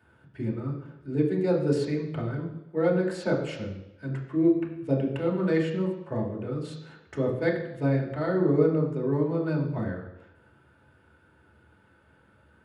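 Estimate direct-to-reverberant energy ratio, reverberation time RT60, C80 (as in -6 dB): -2.5 dB, 0.90 s, 8.5 dB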